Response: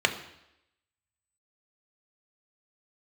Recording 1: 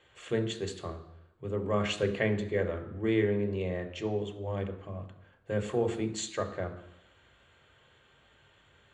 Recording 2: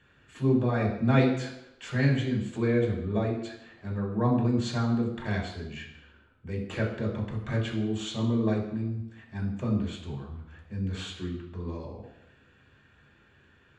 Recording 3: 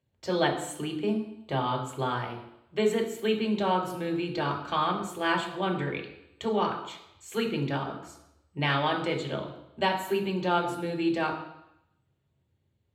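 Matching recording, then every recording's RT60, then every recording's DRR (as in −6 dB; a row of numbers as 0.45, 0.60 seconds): 1; 0.85, 0.85, 0.85 seconds; 5.0, −4.5, 0.0 decibels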